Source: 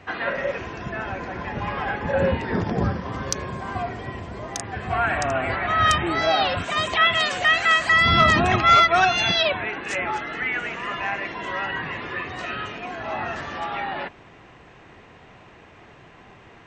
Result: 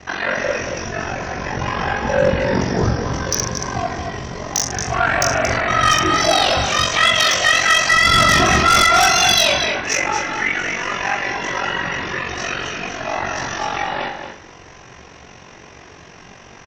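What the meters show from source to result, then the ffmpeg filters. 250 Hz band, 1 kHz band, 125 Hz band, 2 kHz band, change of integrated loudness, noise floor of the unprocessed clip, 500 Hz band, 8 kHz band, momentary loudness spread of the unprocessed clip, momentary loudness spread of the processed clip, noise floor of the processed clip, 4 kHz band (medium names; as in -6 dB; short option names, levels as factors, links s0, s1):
+4.5 dB, +4.0 dB, +4.5 dB, +5.0 dB, +5.5 dB, -49 dBFS, +5.0 dB, +16.0 dB, 15 LU, 13 LU, -42 dBFS, +7.5 dB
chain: -filter_complex "[0:a]asplit=2[s0][s1];[s1]aecho=0:1:20|44|72.8|107.4|148.8:0.631|0.398|0.251|0.158|0.1[s2];[s0][s2]amix=inputs=2:normalize=0,aeval=exprs='val(0)*sin(2*PI*23*n/s)':c=same,lowpass=f=5800:t=q:w=10,asplit=2[s3][s4];[s4]adelay=42,volume=0.251[s5];[s3][s5]amix=inputs=2:normalize=0,asplit=2[s6][s7];[s7]adelay=227.4,volume=0.447,highshelf=f=4000:g=-5.12[s8];[s6][s8]amix=inputs=2:normalize=0,asplit=2[s9][s10];[s10]aeval=exprs='1*sin(PI/2*3.98*val(0)/1)':c=same,volume=0.335[s11];[s9][s11]amix=inputs=2:normalize=0,volume=0.631"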